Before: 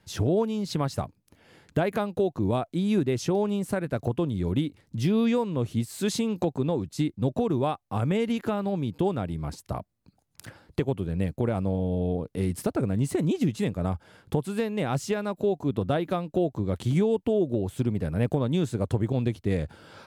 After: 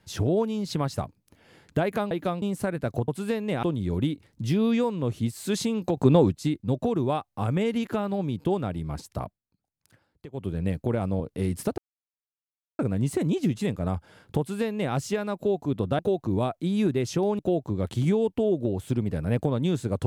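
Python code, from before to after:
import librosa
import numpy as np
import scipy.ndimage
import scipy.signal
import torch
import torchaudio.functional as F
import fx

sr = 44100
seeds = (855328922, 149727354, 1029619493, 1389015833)

y = fx.edit(x, sr, fx.swap(start_s=2.11, length_s=1.4, other_s=15.97, other_length_s=0.31),
    fx.clip_gain(start_s=6.51, length_s=0.35, db=8.5),
    fx.fade_down_up(start_s=9.78, length_s=1.23, db=-16.5, fade_s=0.15),
    fx.cut(start_s=11.74, length_s=0.45),
    fx.insert_silence(at_s=12.77, length_s=1.01),
    fx.duplicate(start_s=14.37, length_s=0.55, to_s=4.17), tone=tone)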